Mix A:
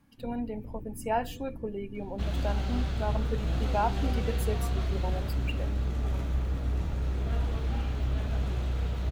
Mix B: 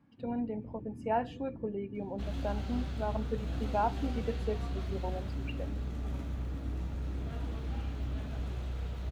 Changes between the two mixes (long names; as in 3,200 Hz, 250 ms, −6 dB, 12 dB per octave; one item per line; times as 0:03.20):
speech: add head-to-tape spacing loss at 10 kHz 26 dB
first sound: add high-pass filter 95 Hz
second sound −7.0 dB